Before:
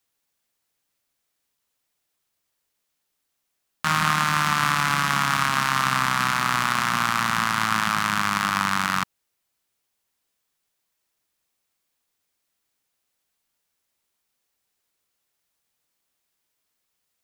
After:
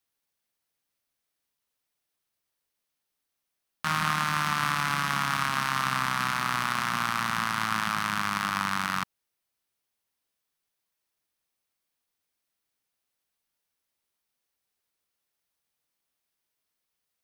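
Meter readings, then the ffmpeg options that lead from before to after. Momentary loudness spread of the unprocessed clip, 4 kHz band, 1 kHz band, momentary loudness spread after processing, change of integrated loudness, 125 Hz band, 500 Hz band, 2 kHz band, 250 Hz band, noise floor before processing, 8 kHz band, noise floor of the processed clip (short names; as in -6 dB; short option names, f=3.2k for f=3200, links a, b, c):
2 LU, -5.5 dB, -5.5 dB, 2 LU, -5.5 dB, -5.5 dB, -5.5 dB, -5.5 dB, -5.5 dB, -78 dBFS, -7.0 dB, -83 dBFS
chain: -af "equalizer=f=7.2k:w=7.2:g=-5.5,volume=-5.5dB"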